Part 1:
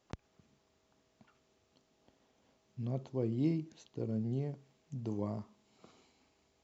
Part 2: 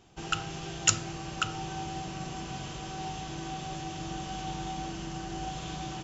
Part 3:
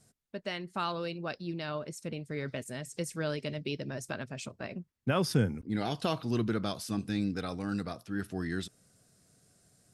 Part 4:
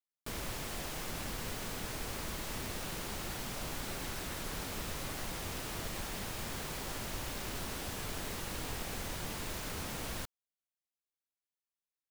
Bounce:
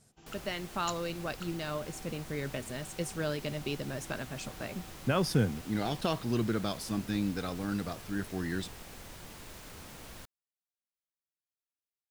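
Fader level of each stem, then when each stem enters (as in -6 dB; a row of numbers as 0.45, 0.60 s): off, -18.0 dB, 0.0 dB, -8.0 dB; off, 0.00 s, 0.00 s, 0.00 s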